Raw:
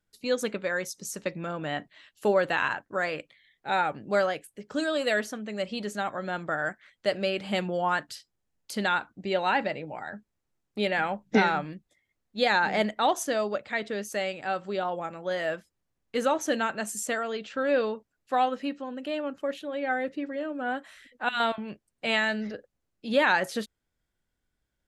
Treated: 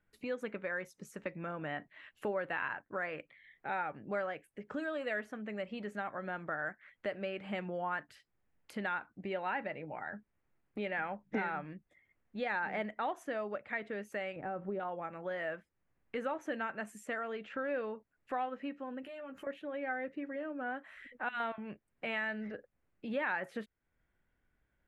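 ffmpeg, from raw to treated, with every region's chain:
-filter_complex "[0:a]asettb=1/sr,asplit=3[a][b][c];[a]atrim=end=14.364[d];[b]atrim=start=14.36:end=14.8,asetpts=PTS-STARTPTS,afade=t=in:d=0.004:c=qsin,afade=t=out:st=0.436:d=0.004:c=qsin,lowpass=f=2.4k:p=1,acompressor=threshold=-30dB:ratio=3:attack=3.2:release=140:knee=1:detection=peak,tiltshelf=f=1.1k:g=9[e];[c]atrim=start=14.796[f];[d][e]acrossfade=d=0.004:c1=hsin:c2=qsin[g];[g][f]acrossfade=d=0.004:c1=qsin:c2=hsin,asettb=1/sr,asplit=3[h][i][j];[h]atrim=end=19.024[k];[i]atrim=start=19.02:end=19.47,asetpts=PTS-STARTPTS,afade=t=in:d=0.004:c=qsin,afade=t=out:st=0.446:d=0.004:c=qsin,aemphasis=mode=production:type=75fm,acompressor=threshold=-45dB:ratio=4:attack=3.2:release=140:knee=1:detection=peak,asplit=2[l][m];[m]adelay=15,volume=-4dB[n];[l][n]amix=inputs=2:normalize=0,atrim=end_sample=19845[o];[j]atrim=start=19.466[p];[k][o]acrossfade=d=0.004:c1=hsin:c2=qsin[q];[q][p]acrossfade=d=0.004:c1=qsin:c2=hsin,acompressor=threshold=-49dB:ratio=2,highshelf=f=3.2k:t=q:w=1.5:g=-13.5,volume=2.5dB"

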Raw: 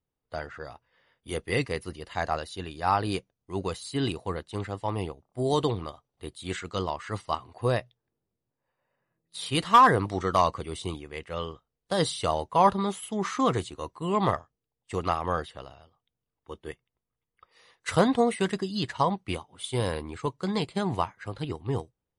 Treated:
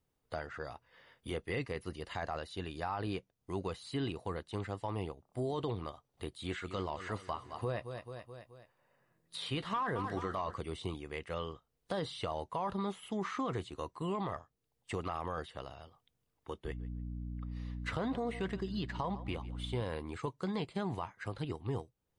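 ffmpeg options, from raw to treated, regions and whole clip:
-filter_complex "[0:a]asettb=1/sr,asplit=3[a][b][c];[a]atrim=end=6.344[d];[b]atrim=start=6.34:end=10.55,asetpts=PTS-STARTPTS,afade=t=in:d=0.004:c=qsin,afade=t=out:st=4.206:d=0.004:c=qsin,asplit=2[e][f];[f]adelay=14,volume=-13.5dB[g];[e][g]amix=inputs=2:normalize=0,atrim=end_sample=185661,aecho=1:1:215|430|645|860:0.168|0.0739|0.0325|0.0143,atrim=end_sample=185661[h];[c]atrim=start=10.546[i];[d][h]acrossfade=d=0.004:c1=hsin:c2=qsin[j];[j][i]acrossfade=d=0.004:c1=qsin:c2=hsin,asettb=1/sr,asplit=3[k][l][m];[k]atrim=end=16.654[n];[l]atrim=start=16.65:end=19.82,asetpts=PTS-STARTPTS,afade=t=in:d=0.004:c=qsin,afade=t=out:st=3.166:d=0.004:c=qsin,adynamicsmooth=sensitivity=7.5:basefreq=7k,aeval=exprs='val(0)+0.0141*(sin(2*PI*60*n/s)+sin(2*PI*2*60*n/s)/2+sin(2*PI*3*60*n/s)/3+sin(2*PI*4*60*n/s)/4+sin(2*PI*5*60*n/s)/5)':c=same,asplit=2[o][p];[p]adelay=145,lowpass=f=3.7k:p=1,volume=-21dB,asplit=2[q][r];[r]adelay=145,lowpass=f=3.7k:p=1,volume=0.24[s];[o][q][s]amix=inputs=3:normalize=0,atrim=end_sample=139797[t];[m]atrim=start=19.816[u];[n][t]acrossfade=d=0.004:c1=hsin:c2=qsin[v];[v][u]acrossfade=d=0.004:c1=qsin:c2=hsin,acrossover=split=3800[w][x];[x]acompressor=threshold=-53dB:ratio=4:attack=1:release=60[y];[w][y]amix=inputs=2:normalize=0,alimiter=limit=-19.5dB:level=0:latency=1:release=16,acompressor=threshold=-49dB:ratio=2,volume=5dB"

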